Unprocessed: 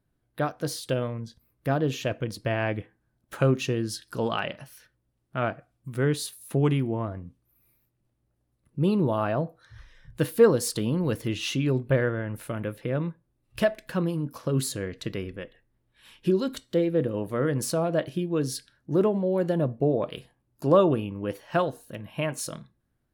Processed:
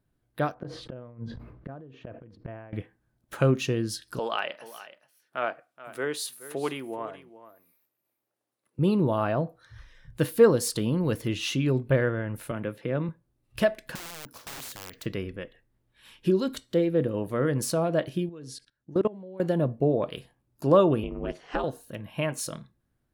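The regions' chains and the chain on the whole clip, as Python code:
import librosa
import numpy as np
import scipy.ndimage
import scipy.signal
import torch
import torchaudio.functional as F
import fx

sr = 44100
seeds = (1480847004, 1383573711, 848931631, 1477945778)

y = fx.chain(x, sr, fx.lowpass(hz=1400.0, slope=12),
    fx.gate_flip(shuts_db=-25.0, range_db=-27),
    fx.sustainer(db_per_s=50.0), at=(0.54, 2.73))
y = fx.chain(y, sr, fx.highpass(hz=470.0, slope=12),
    fx.echo_single(ms=425, db=-15.5), at=(4.19, 8.79))
y = fx.chain(y, sr, fx.highpass(hz=120.0, slope=12),
    fx.high_shelf(hz=8400.0, db=-10.0), at=(12.51, 13.09))
y = fx.chain(y, sr, fx.overflow_wrap(gain_db=25.0),
    fx.resample_bad(factor=2, down='filtered', up='hold'),
    fx.spectral_comp(ratio=2.0), at=(13.95, 15.06))
y = fx.chain(y, sr, fx.lowpass(hz=10000.0, slope=24),
    fx.level_steps(step_db=21), at=(18.29, 19.4))
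y = fx.chain(y, sr, fx.lowpass(hz=8100.0, slope=24),
    fx.ring_mod(carrier_hz=140.0),
    fx.band_squash(depth_pct=70), at=(21.03, 21.64))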